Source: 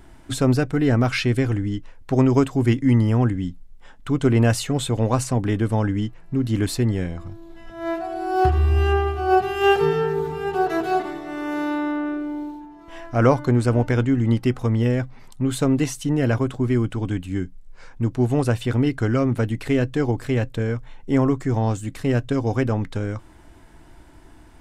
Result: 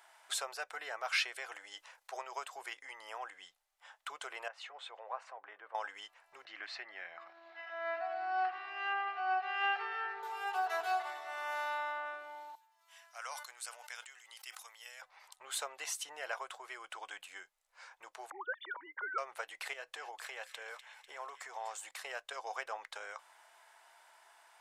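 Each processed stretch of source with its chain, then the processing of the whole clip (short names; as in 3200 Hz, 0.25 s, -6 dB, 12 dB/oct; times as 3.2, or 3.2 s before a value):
1.55–2.17 tone controls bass -3 dB, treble +5 dB + transient shaper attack -6 dB, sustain +5 dB
4.48–5.75 compressor 5:1, threshold -26 dBFS + BPF 170–2100 Hz + three-band expander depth 100%
6.45–10.23 upward compressor, threshold -22 dBFS + speaker cabinet 120–3900 Hz, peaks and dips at 170 Hz +5 dB, 300 Hz +6 dB, 470 Hz -10 dB, 940 Hz -7 dB, 1900 Hz +4 dB, 3400 Hz -8 dB
12.55–15.02 differentiator + sustainer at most 64 dB/s
18.3–19.18 sine-wave speech + fixed phaser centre 710 Hz, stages 6
19.73–21.91 compressor, threshold -23 dBFS + thin delay 0.248 s, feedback 58%, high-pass 2100 Hz, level -8.5 dB
whole clip: compressor, threshold -20 dBFS; inverse Chebyshev high-pass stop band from 270 Hz, stop band 50 dB; gain -5 dB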